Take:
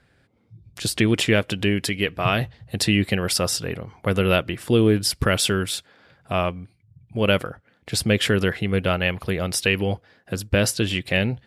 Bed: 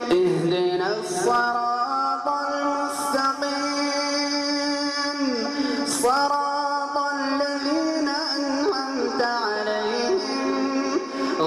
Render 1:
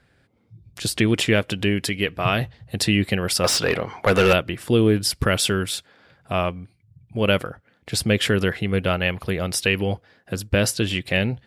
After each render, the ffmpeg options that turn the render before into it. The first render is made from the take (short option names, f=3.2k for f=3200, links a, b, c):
-filter_complex "[0:a]asettb=1/sr,asplit=3[a][b][c];[a]atrim=end=3.444[d];[b]atrim=start=3.44:end=4.33,asetpts=PTS-STARTPTS,afade=t=in:d=0.004:c=qsin,afade=t=out:st=0.886:d=0.004:c=qsin,asplit=2[e][f];[f]highpass=f=720:p=1,volume=22dB,asoftclip=type=tanh:threshold=-6.5dB[g];[e][g]amix=inputs=2:normalize=0,lowpass=f=3.1k:p=1,volume=-6dB[h];[c]atrim=start=4.326[i];[d][h]acrossfade=d=0.004:c1=hsin:c2=qsin[j];[j][i]acrossfade=d=0.004:c1=qsin:c2=hsin"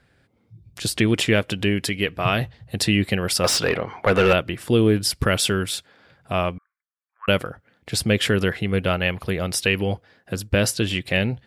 -filter_complex "[0:a]asettb=1/sr,asplit=3[a][b][c];[a]atrim=end=3.694[d];[b]atrim=start=3.69:end=4.38,asetpts=PTS-STARTPTS,afade=t=in:d=0.004:c=qsin,afade=t=out:st=0.686:d=0.004:c=qsin,bass=f=250:g=-1,treble=f=4k:g=-8[e];[c]atrim=start=4.376[f];[d][e]acrossfade=d=0.004:c1=hsin:c2=qsin[g];[g][f]acrossfade=d=0.004:c1=qsin:c2=hsin,asettb=1/sr,asplit=3[h][i][j];[h]atrim=end=6.584[k];[i]atrim=start=6.58:end=7.28,asetpts=PTS-STARTPTS,afade=t=in:d=0.004:c=qsin,afade=t=out:st=0.696:d=0.004:c=qsin,asuperpass=centerf=1400:order=8:qfactor=1.9[l];[j]atrim=start=7.276[m];[k][l]acrossfade=d=0.004:c1=hsin:c2=qsin[n];[n][m]acrossfade=d=0.004:c1=qsin:c2=hsin"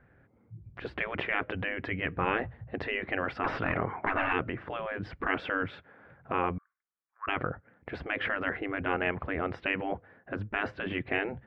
-af "lowpass=f=1.9k:w=0.5412,lowpass=f=1.9k:w=1.3066,afftfilt=real='re*lt(hypot(re,im),0.251)':imag='im*lt(hypot(re,im),0.251)':win_size=1024:overlap=0.75"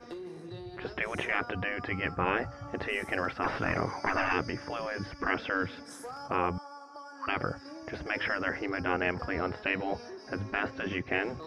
-filter_complex "[1:a]volume=-22.5dB[a];[0:a][a]amix=inputs=2:normalize=0"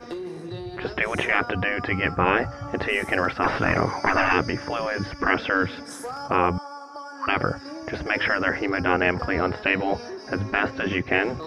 -af "volume=8.5dB"